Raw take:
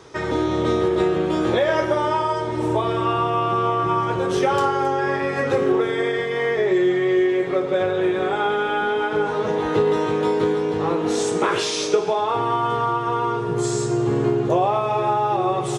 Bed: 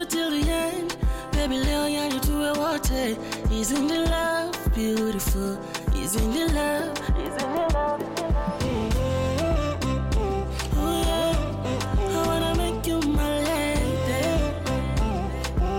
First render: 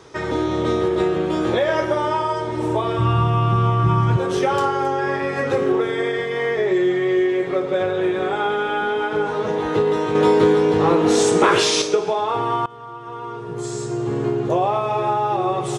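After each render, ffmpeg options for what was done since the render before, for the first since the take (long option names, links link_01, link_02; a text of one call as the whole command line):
ffmpeg -i in.wav -filter_complex "[0:a]asplit=3[link_01][link_02][link_03];[link_01]afade=type=out:start_time=2.98:duration=0.02[link_04];[link_02]asubboost=boost=10.5:cutoff=150,afade=type=in:start_time=2.98:duration=0.02,afade=type=out:start_time=4.16:duration=0.02[link_05];[link_03]afade=type=in:start_time=4.16:duration=0.02[link_06];[link_04][link_05][link_06]amix=inputs=3:normalize=0,asettb=1/sr,asplit=3[link_07][link_08][link_09];[link_07]atrim=end=10.154[link_10];[link_08]atrim=start=10.15:end=11.82,asetpts=PTS-STARTPTS,afade=type=in:duration=0.004:curve=qsin,afade=type=out:start_time=1.666:duration=0.004:curve=qsin,acontrast=51[link_11];[link_09]atrim=start=11.816[link_12];[link_10][link_11]acrossfade=duration=0.004:curve1=hsin:curve2=qsin[link_13];[link_13][link_12]acrossfade=duration=0.004:curve1=qsin:curve2=hsin,asplit=2[link_14][link_15];[link_14]atrim=end=12.66,asetpts=PTS-STARTPTS,afade=type=out:start_time=12.656:duration=0.004:curve=hsin:silence=0.0944061[link_16];[link_15]atrim=start=12.66,asetpts=PTS-STARTPTS,afade=type=in:duration=2.02:silence=0.0944061[link_17];[link_16][link_17]concat=n=2:v=0:a=1" out.wav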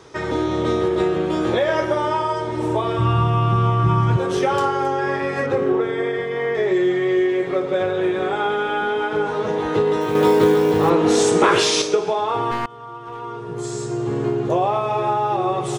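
ffmpeg -i in.wav -filter_complex "[0:a]asettb=1/sr,asplit=3[link_01][link_02][link_03];[link_01]atrim=end=5.464[link_04];[link_02]atrim=start=5.46:end=6.55,asetpts=PTS-STARTPTS,afade=type=in:duration=0.004:curve=qsin,afade=type=out:start_time=1.086:duration=0.004:curve=qsin,highshelf=frequency=3200:gain=-10[link_05];[link_03]atrim=start=6.546[link_06];[link_04][link_05]acrossfade=duration=0.004:curve1=hsin:curve2=qsin[link_07];[link_07][link_06]acrossfade=duration=0.004:curve1=qsin:curve2=hsin,asettb=1/sr,asplit=3[link_08][link_09][link_10];[link_08]atrim=end=10.014[link_11];[link_09]atrim=start=10.01:end=10.9,asetpts=PTS-STARTPTS,afade=type=in:duration=0.004:curve=qsin,afade=type=out:start_time=0.886:duration=0.004:curve=qsin,acrusher=bits=7:mode=log:mix=0:aa=0.000001[link_12];[link_10]atrim=start=10.896[link_13];[link_11][link_12]acrossfade=duration=0.004:curve1=hsin:curve2=qsin[link_14];[link_14][link_13]acrossfade=duration=0.004:curve1=qsin:curve2=hsin,asettb=1/sr,asplit=3[link_15][link_16][link_17];[link_15]atrim=end=12.514[link_18];[link_16]atrim=start=12.51:end=13.21,asetpts=PTS-STARTPTS,afade=type=in:duration=0.004:curve=qsin,afade=type=out:start_time=0.696:duration=0.004:curve=qsin,aeval=exprs='clip(val(0),-1,0.0376)':channel_layout=same[link_19];[link_17]atrim=start=13.206[link_20];[link_18][link_19]acrossfade=duration=0.004:curve1=hsin:curve2=qsin[link_21];[link_21][link_20]acrossfade=duration=0.004:curve1=qsin:curve2=hsin" out.wav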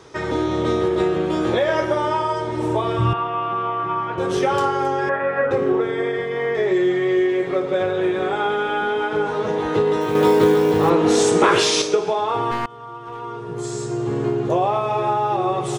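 ffmpeg -i in.wav -filter_complex "[0:a]asettb=1/sr,asplit=3[link_01][link_02][link_03];[link_01]atrim=end=3.134[link_04];[link_02]atrim=start=3.13:end=4.18,asetpts=PTS-STARTPTS,afade=type=in:duration=0.004:curve=qsin,afade=type=out:start_time=1.046:duration=0.004:curve=qsin,highpass=430,lowpass=2700[link_05];[link_03]atrim=start=4.176[link_06];[link_04][link_05]acrossfade=duration=0.004:curve1=hsin:curve2=qsin[link_07];[link_07][link_06]acrossfade=duration=0.004:curve1=qsin:curve2=hsin,asettb=1/sr,asplit=3[link_08][link_09][link_10];[link_08]atrim=end=5.094[link_11];[link_09]atrim=start=5.09:end=5.51,asetpts=PTS-STARTPTS,afade=type=in:duration=0.004:curve=qsin,afade=type=out:start_time=0.416:duration=0.004:curve=qsin,highpass=110,equalizer=frequency=140:width_type=q:width=4:gain=-6,equalizer=frequency=260:width_type=q:width=4:gain=-6,equalizer=frequency=370:width_type=q:width=4:gain=-8,equalizer=frequency=560:width_type=q:width=4:gain=6,equalizer=frequency=1500:width_type=q:width=4:gain=8,equalizer=frequency=2200:width_type=q:width=4:gain=-5,lowpass=frequency=2600:width=0.5412,lowpass=frequency=2600:width=1.3066[link_12];[link_10]atrim=start=5.506[link_13];[link_11][link_12]acrossfade=duration=0.004:curve1=hsin:curve2=qsin[link_14];[link_14][link_13]acrossfade=duration=0.004:curve1=qsin:curve2=hsin" out.wav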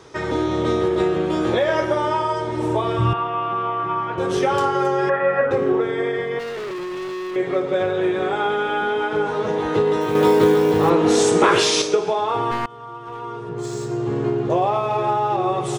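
ffmpeg -i in.wav -filter_complex "[0:a]asettb=1/sr,asplit=3[link_01][link_02][link_03];[link_01]atrim=end=4.744[link_04];[link_02]atrim=start=4.74:end=5.41,asetpts=PTS-STARTPTS,afade=type=in:duration=0.004:curve=qsin,afade=type=out:start_time=0.666:duration=0.004:curve=qsin,aecho=1:1:5.7:0.65,atrim=end_sample=29547[link_05];[link_03]atrim=start=5.406[link_06];[link_04][link_05]acrossfade=duration=0.004:curve1=hsin:curve2=qsin[link_07];[link_07][link_06]acrossfade=duration=0.004:curve1=qsin:curve2=hsin,asettb=1/sr,asplit=3[link_08][link_09][link_10];[link_08]atrim=end=6.394[link_11];[link_09]atrim=start=6.39:end=7.36,asetpts=PTS-STARTPTS,afade=type=in:duration=0.004:curve=qsin,afade=type=out:start_time=0.966:duration=0.004:curve=qsin,asoftclip=type=hard:threshold=-27.5dB[link_12];[link_10]atrim=start=7.356[link_13];[link_11][link_12]acrossfade=duration=0.004:curve1=hsin:curve2=qsin[link_14];[link_14][link_13]acrossfade=duration=0.004:curve1=qsin:curve2=hsin,asettb=1/sr,asplit=3[link_15][link_16][link_17];[link_15]atrim=end=13.494[link_18];[link_16]atrim=start=13.49:end=15.46,asetpts=PTS-STARTPTS,afade=type=in:duration=0.004:curve=qsin,afade=type=out:start_time=1.966:duration=0.004:curve=qsin,adynamicsmooth=sensitivity=7.5:basefreq=5200[link_19];[link_17]atrim=start=15.456[link_20];[link_18][link_19]acrossfade=duration=0.004:curve1=hsin:curve2=qsin[link_21];[link_21][link_20]acrossfade=duration=0.004:curve1=qsin:curve2=hsin" out.wav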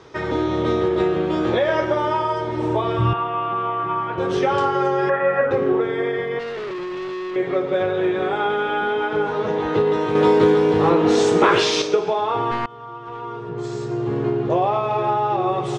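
ffmpeg -i in.wav -af "lowpass=4800" out.wav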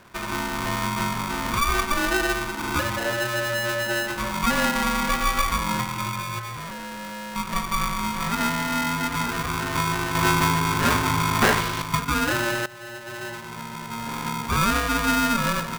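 ffmpeg -i in.wav -af "bandpass=frequency=850:width_type=q:width=1.2:csg=0,aeval=exprs='val(0)*sgn(sin(2*PI*580*n/s))':channel_layout=same" out.wav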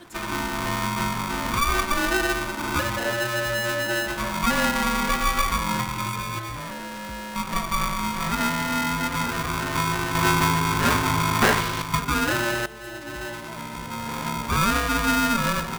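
ffmpeg -i in.wav -i bed.wav -filter_complex "[1:a]volume=-18.5dB[link_01];[0:a][link_01]amix=inputs=2:normalize=0" out.wav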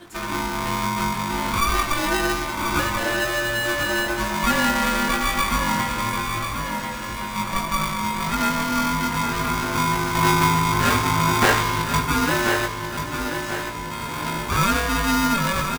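ffmpeg -i in.wav -filter_complex "[0:a]asplit=2[link_01][link_02];[link_02]adelay=20,volume=-4.5dB[link_03];[link_01][link_03]amix=inputs=2:normalize=0,asplit=2[link_04][link_05];[link_05]aecho=0:1:1037|2074|3111|4148|5185:0.422|0.186|0.0816|0.0359|0.0158[link_06];[link_04][link_06]amix=inputs=2:normalize=0" out.wav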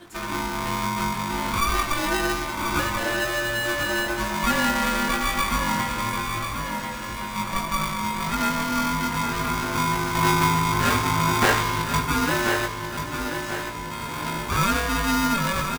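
ffmpeg -i in.wav -af "volume=-2dB" out.wav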